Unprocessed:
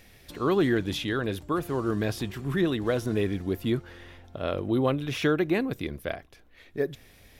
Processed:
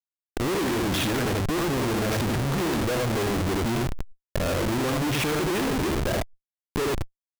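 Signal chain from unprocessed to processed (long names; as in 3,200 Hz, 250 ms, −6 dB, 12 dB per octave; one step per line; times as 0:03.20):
on a send: single-tap delay 78 ms −4.5 dB
on the sum: automatic gain control gain up to 10 dB
0:05.69–0:06.12: hollow resonant body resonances 390/1,600 Hz, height 9 dB, ringing for 30 ms
comparator with hysteresis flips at −27 dBFS
background raised ahead of every attack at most 47 dB per second
level −6.5 dB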